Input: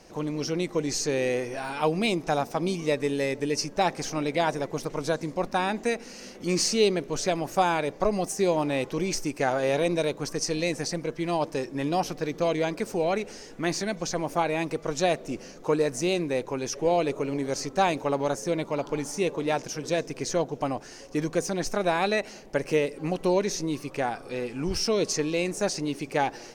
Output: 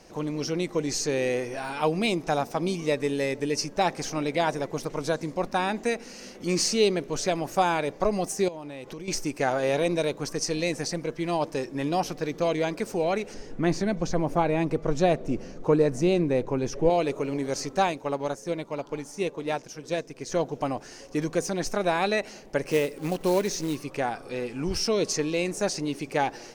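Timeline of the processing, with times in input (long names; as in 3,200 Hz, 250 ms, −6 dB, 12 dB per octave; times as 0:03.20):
0:08.48–0:09.08: downward compressor 16 to 1, threshold −34 dBFS
0:13.34–0:16.90: spectral tilt −2.5 dB per octave
0:17.80–0:20.32: expander for the loud parts, over −35 dBFS
0:22.66–0:23.77: floating-point word with a short mantissa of 2 bits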